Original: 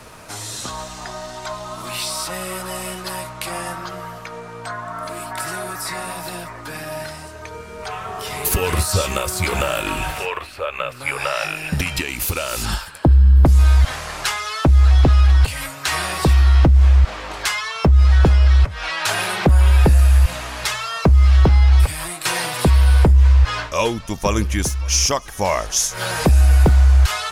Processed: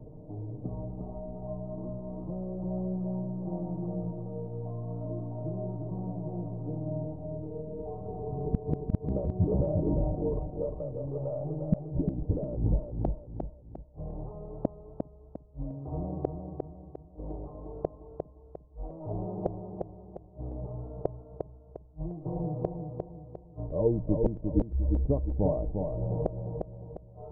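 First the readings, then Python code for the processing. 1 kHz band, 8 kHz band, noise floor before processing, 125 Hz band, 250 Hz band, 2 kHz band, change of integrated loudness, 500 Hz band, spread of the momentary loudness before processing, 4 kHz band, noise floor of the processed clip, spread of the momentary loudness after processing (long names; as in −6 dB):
−20.0 dB, below −40 dB, −36 dBFS, −17.0 dB, −7.0 dB, below −40 dB, −17.0 dB, −8.0 dB, 17 LU, below −40 dB, −52 dBFS, 14 LU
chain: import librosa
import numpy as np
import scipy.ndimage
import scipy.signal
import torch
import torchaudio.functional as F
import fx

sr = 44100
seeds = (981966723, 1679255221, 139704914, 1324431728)

p1 = scipy.ndimage.gaussian_filter1d(x, 18.0, mode='constant')
p2 = p1 + 0.47 * np.pad(p1, (int(6.6 * sr / 1000.0), 0))[:len(p1)]
p3 = fx.gate_flip(p2, sr, shuts_db=-13.0, range_db=-41)
y = p3 + fx.echo_feedback(p3, sr, ms=352, feedback_pct=39, wet_db=-5, dry=0)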